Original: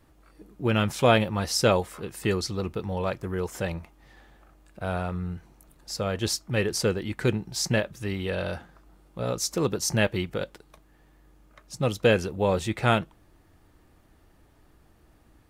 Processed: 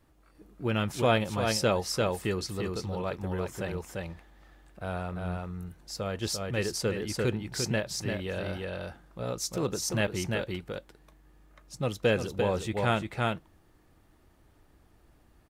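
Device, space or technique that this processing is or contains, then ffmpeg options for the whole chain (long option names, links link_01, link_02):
ducked delay: -filter_complex "[0:a]asplit=3[link_01][link_02][link_03];[link_02]adelay=346,volume=-2dB[link_04];[link_03]apad=whole_len=698424[link_05];[link_04][link_05]sidechaincompress=threshold=-30dB:ratio=8:attack=35:release=123[link_06];[link_01][link_06]amix=inputs=2:normalize=0,volume=-5dB"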